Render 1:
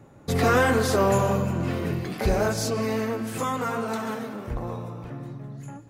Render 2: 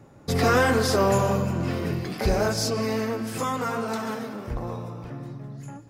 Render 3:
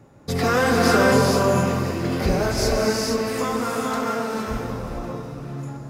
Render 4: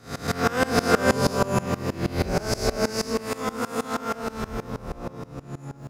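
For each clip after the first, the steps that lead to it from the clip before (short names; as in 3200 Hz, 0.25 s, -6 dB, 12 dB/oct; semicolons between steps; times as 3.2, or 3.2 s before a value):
bell 5100 Hz +7 dB 0.3 oct
split-band echo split 390 Hz, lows 0.422 s, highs 0.552 s, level -16 dB; non-linear reverb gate 0.49 s rising, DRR -1.5 dB
spectral swells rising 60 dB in 1.35 s; dB-ramp tremolo swelling 6.3 Hz, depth 22 dB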